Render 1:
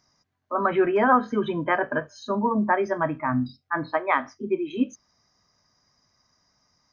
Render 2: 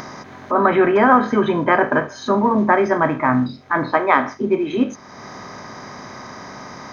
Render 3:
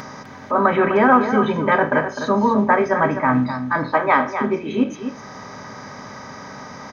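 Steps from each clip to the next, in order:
per-bin compression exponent 0.6; in parallel at +2 dB: upward compressor, threshold -24 dBFS; on the sum: gain -3 dB
notch comb 350 Hz; echo 0.254 s -9 dB

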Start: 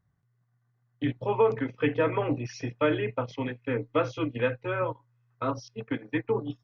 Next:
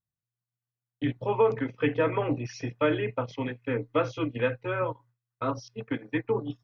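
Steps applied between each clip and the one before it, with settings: gate with hold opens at -54 dBFS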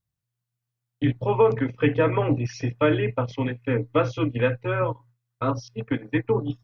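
low shelf 120 Hz +10.5 dB; gain +3.5 dB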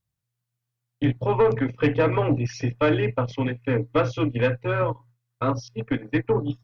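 tube stage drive 13 dB, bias 0.25; gain +2 dB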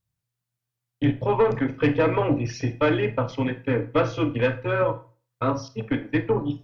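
reverb RT60 0.35 s, pre-delay 23 ms, DRR 10.5 dB

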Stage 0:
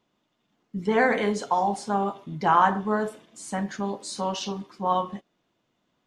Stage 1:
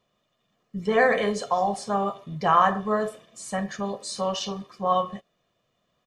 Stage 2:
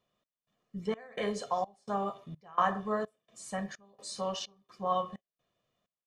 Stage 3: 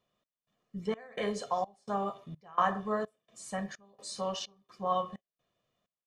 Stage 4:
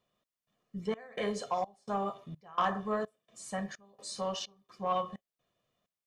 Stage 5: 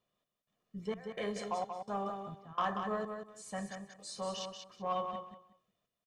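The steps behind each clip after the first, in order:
comb 1.7 ms, depth 60%
step gate "xxx...xxx" 192 bpm -24 dB; gain -7.5 dB
nothing audible
soft clip -20 dBFS, distortion -18 dB
feedback echo 0.184 s, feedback 21%, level -6.5 dB; gain -4 dB

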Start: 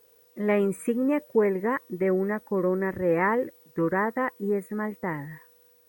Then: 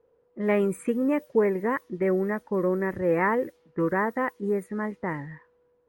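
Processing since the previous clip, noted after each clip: low-pass opened by the level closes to 940 Hz, open at -23.5 dBFS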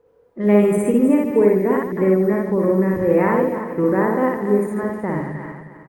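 regenerating reverse delay 0.156 s, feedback 56%, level -8.5 dB; loudspeakers at several distances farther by 20 m -1 dB, 50 m -9 dB; dynamic EQ 1700 Hz, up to -8 dB, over -39 dBFS, Q 0.75; gain +6 dB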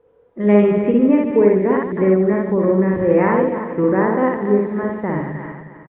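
downsampling 8000 Hz; gain +1.5 dB

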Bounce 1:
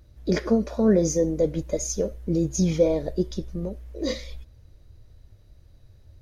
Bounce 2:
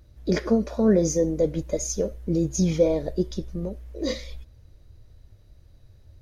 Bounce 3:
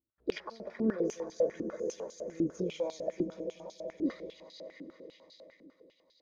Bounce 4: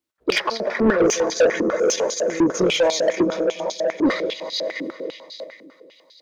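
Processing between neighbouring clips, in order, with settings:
nothing audible
gate -45 dBFS, range -22 dB; swelling echo 95 ms, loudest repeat 5, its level -15 dB; stepped band-pass 10 Hz 290–4200 Hz
overdrive pedal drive 21 dB, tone 6200 Hz, clips at -18 dBFS; in parallel at +1 dB: level quantiser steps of 21 dB; on the sum: three-band expander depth 40%; gain +8 dB

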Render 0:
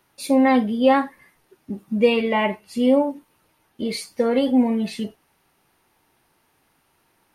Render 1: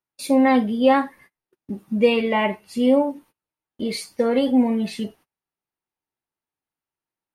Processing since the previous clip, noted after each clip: gate -47 dBFS, range -28 dB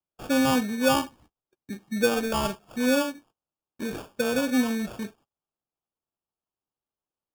small resonant body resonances 1200/2700 Hz, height 8 dB; sample-and-hold 22×; gain -6 dB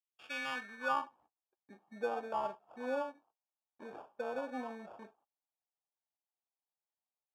band-pass sweep 3000 Hz -> 800 Hz, 0.14–1.23; gain -4 dB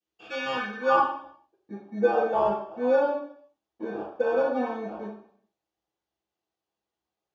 reverb RT60 0.60 s, pre-delay 3 ms, DRR -12.5 dB; gain -6.5 dB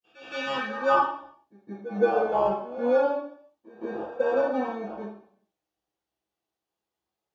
vibrato 0.3 Hz 53 cents; pre-echo 0.167 s -16 dB

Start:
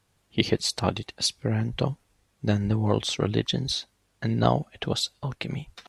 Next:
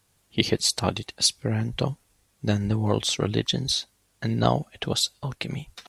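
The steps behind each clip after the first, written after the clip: high shelf 5700 Hz +10 dB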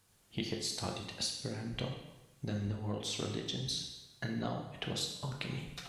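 compressor 5:1, threshold -33 dBFS, peak gain reduction 16.5 dB; reverb RT60 1.0 s, pre-delay 7 ms, DRR 2 dB; gain -3.5 dB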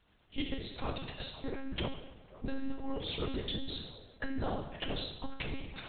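band-limited delay 0.505 s, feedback 72%, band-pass 710 Hz, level -15 dB; monotone LPC vocoder at 8 kHz 270 Hz; gain +2.5 dB

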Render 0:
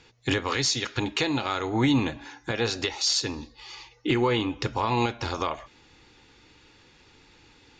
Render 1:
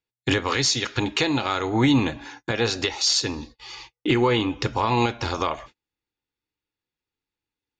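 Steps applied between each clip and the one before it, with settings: gate -46 dBFS, range -38 dB; gain +3.5 dB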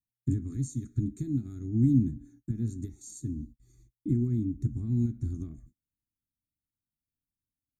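inverse Chebyshev band-stop 480–5400 Hz, stop band 40 dB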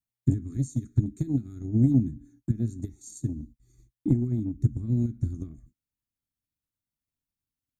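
transient shaper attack +7 dB, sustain -1 dB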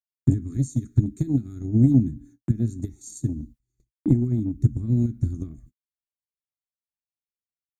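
gate -53 dBFS, range -23 dB; gain +4 dB

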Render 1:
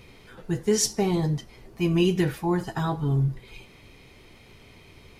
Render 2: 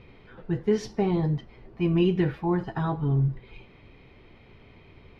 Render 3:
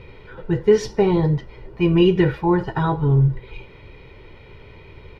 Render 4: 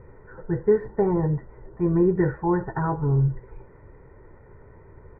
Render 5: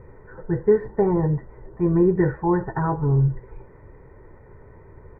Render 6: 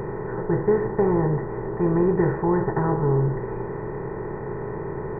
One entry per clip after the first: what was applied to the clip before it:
air absorption 330 m
comb 2.1 ms, depth 50%; gain +7.5 dB
elliptic low-pass 1800 Hz, stop band 40 dB; gain -4 dB
notch 1400 Hz, Q 19; gain +2 dB
per-bin compression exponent 0.4; gain -5 dB

